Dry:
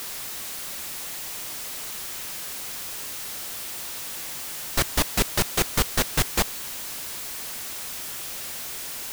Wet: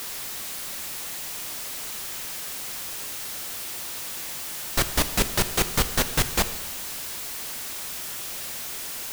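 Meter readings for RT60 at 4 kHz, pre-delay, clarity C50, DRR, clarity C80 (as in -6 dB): 1.2 s, 6 ms, 12.5 dB, 10.5 dB, 14.0 dB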